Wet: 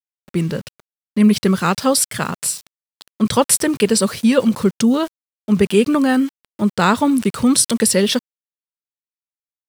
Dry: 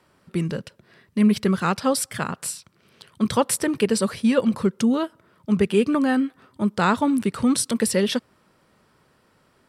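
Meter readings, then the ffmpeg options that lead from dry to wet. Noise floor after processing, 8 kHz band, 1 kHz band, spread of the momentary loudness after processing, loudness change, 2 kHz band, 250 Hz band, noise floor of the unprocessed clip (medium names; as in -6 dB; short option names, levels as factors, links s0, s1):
under -85 dBFS, +9.5 dB, +4.5 dB, 9 LU, +5.5 dB, +5.0 dB, +5.0 dB, -62 dBFS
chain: -af "highshelf=f=2100:g=-2.5,aeval=exprs='val(0)*gte(abs(val(0)),0.00841)':c=same,adynamicequalizer=threshold=0.00891:dfrequency=3000:dqfactor=0.7:tfrequency=3000:tqfactor=0.7:attack=5:release=100:ratio=0.375:range=3.5:mode=boostabove:tftype=highshelf,volume=1.78"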